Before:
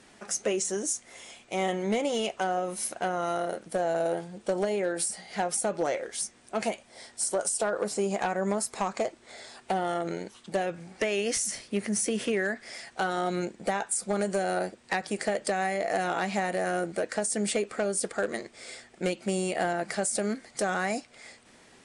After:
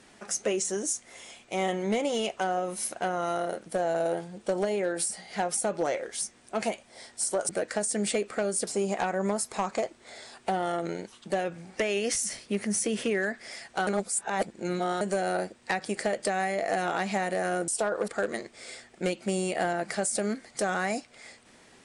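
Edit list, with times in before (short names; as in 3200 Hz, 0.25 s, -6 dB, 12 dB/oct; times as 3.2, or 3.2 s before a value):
7.49–7.89 swap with 16.9–18.08
13.09–14.23 reverse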